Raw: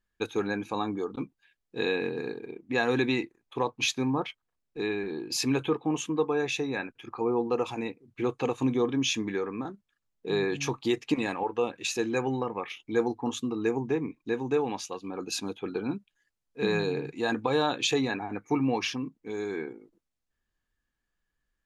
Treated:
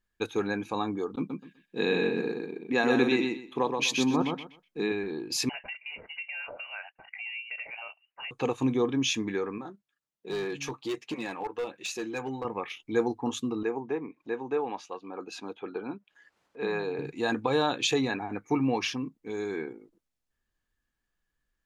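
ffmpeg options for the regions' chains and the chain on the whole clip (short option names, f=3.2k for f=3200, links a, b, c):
-filter_complex "[0:a]asettb=1/sr,asplit=3[a][b][c];[a]atrim=end=1.164[d];[b]atrim=start=1.16:end=4.92,asetpts=PTS-STARTPTS,afade=t=in:d=0.004:c=qsin,afade=t=out:st=3.756:d=0.004:c=qsin,lowshelf=f=130:t=q:w=3:g=-9,aecho=1:1:125|250|375:0.596|0.125|0.0263,atrim=end_sample=165816[e];[c]atrim=start=4.916[f];[d][e]acrossfade=d=0.004:c1=hsin:c2=qsin[g];[g][f]acrossfade=d=0.004:c1=qsin:c2=hsin,asettb=1/sr,asplit=3[h][i][j];[h]atrim=end=5.494[k];[i]atrim=start=5.49:end=8.31,asetpts=PTS-STARTPTS,afade=t=in:d=0.004:c=qsin,afade=t=out:st=2.816:d=0.004:c=qsin,highpass=f=490:w=0.5412,highpass=f=490:w=1.3066,acompressor=threshold=-35dB:ratio=4:attack=3.2:release=140:knee=1:detection=peak,lowpass=f=2.7k:t=q:w=0.5098,lowpass=f=2.7k:t=q:w=0.6013,lowpass=f=2.7k:t=q:w=0.9,lowpass=f=2.7k:t=q:w=2.563,afreqshift=-3200[l];[j]atrim=start=8.306[m];[k][l]acrossfade=d=0.004:c1=hsin:c2=qsin[n];[n][m]acrossfade=d=0.004:c1=qsin:c2=hsin,asettb=1/sr,asplit=3[o][p][q];[o]atrim=end=9.584[r];[p]atrim=start=9.58:end=12.45,asetpts=PTS-STARTPTS,afade=t=in:d=0.004:c=qsin,afade=t=out:st=2.866:d=0.004:c=qsin,highpass=f=200:p=1,flanger=delay=5.3:depth=1.5:regen=-37:speed=1.3:shape=sinusoidal,asoftclip=type=hard:threshold=-27.5dB[s];[q]atrim=start=12.446[t];[r][s]acrossfade=d=0.004:c1=hsin:c2=qsin[u];[u][t]acrossfade=d=0.004:c1=qsin:c2=hsin,asettb=1/sr,asplit=3[v][w][x];[v]atrim=end=13.634[y];[w]atrim=start=13.63:end=16.99,asetpts=PTS-STARTPTS,afade=t=in:d=0.004:c=qsin,afade=t=out:st=3.356:d=0.004:c=qsin,acompressor=mode=upward:threshold=-38dB:ratio=2.5:attack=3.2:release=140:knee=2.83:detection=peak,bandpass=f=890:t=q:w=0.59[z];[x]atrim=start=16.986[aa];[y][z]acrossfade=d=0.004:c1=hsin:c2=qsin[ab];[ab][aa]acrossfade=d=0.004:c1=qsin:c2=hsin"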